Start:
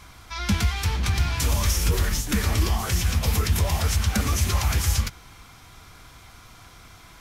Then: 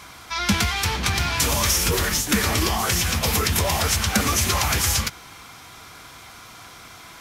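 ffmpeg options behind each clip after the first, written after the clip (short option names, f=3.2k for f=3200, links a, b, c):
-af "highpass=f=250:p=1,volume=7dB"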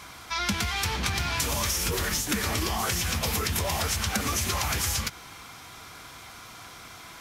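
-af "acompressor=threshold=-22dB:ratio=6,volume=-2dB"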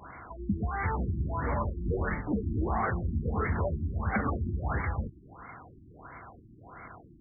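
-af "afftfilt=real='re*lt(b*sr/1024,350*pow(2300/350,0.5+0.5*sin(2*PI*1.5*pts/sr)))':imag='im*lt(b*sr/1024,350*pow(2300/350,0.5+0.5*sin(2*PI*1.5*pts/sr)))':win_size=1024:overlap=0.75,volume=1dB"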